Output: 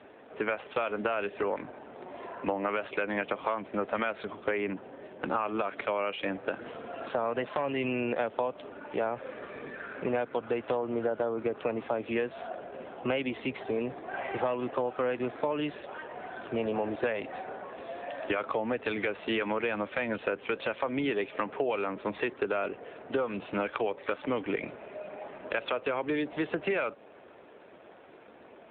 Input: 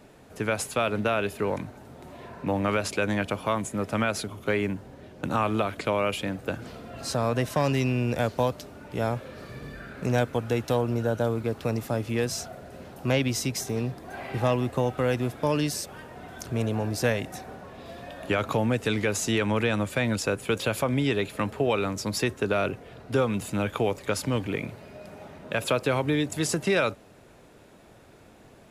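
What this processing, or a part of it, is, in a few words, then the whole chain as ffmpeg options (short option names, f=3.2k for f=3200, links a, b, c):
voicemail: -filter_complex "[0:a]asettb=1/sr,asplit=3[a][b][c];[a]atrim=end=17.134[d];[b]atrim=start=17.13:end=17.94,asetpts=PTS-STARTPTS,afade=t=in:d=0.004:c=qsin,afade=t=out:st=0.806:d=0.004:c=qsin,adynamicequalizer=threshold=0.00112:dfrequency=7500:dqfactor=1.4:tfrequency=7500:tqfactor=1.4:attack=5:release=100:ratio=0.375:range=3:mode=boostabove:tftype=bell[e];[c]atrim=start=17.936[f];[d][e]acrossfade=d=0.004:c1=hsin:c2=qsin[g];[g][f]acrossfade=d=0.004:c1=qsin:c2=hsin,highpass=340,lowpass=3.2k,acompressor=threshold=-30dB:ratio=12,volume=5dB" -ar 8000 -c:a libopencore_amrnb -b:a 7400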